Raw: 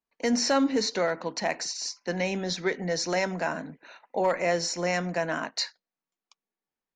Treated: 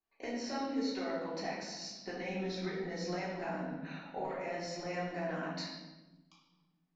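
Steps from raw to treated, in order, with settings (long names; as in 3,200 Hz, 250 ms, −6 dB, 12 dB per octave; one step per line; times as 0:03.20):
downward compressor 4 to 1, threshold −40 dBFS, peak gain reduction 16.5 dB
high-frequency loss of the air 110 metres
convolution reverb RT60 1.1 s, pre-delay 3 ms, DRR −7.5 dB
level −5 dB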